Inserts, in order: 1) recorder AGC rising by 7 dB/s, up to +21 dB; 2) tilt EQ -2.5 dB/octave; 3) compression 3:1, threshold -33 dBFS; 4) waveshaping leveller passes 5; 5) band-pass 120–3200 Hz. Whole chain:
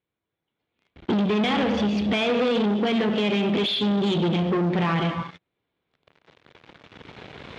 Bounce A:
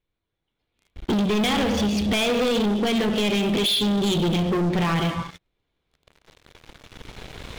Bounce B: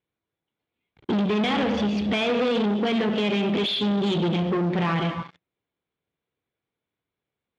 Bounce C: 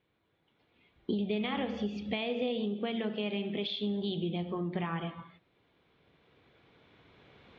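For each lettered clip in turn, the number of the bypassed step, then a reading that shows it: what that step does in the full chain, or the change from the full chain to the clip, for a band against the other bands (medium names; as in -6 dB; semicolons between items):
5, 4 kHz band +3.0 dB; 1, momentary loudness spread change -3 LU; 4, 1 kHz band -1.5 dB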